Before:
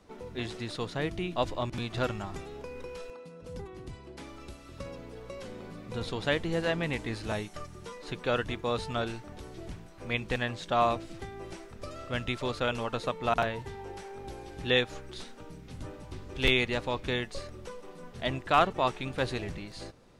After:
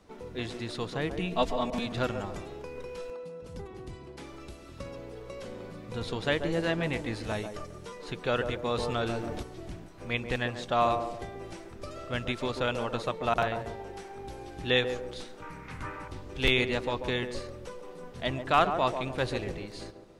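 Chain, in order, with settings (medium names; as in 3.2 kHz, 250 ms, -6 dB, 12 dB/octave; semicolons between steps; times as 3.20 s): 1.19–1.86 s: comb 4.4 ms, depth 85%; 15.42–16.08 s: high-order bell 1.5 kHz +14 dB; on a send: band-passed feedback delay 139 ms, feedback 46%, band-pass 440 Hz, level -5.5 dB; 8.77–9.43 s: on the sum: level flattener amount 50%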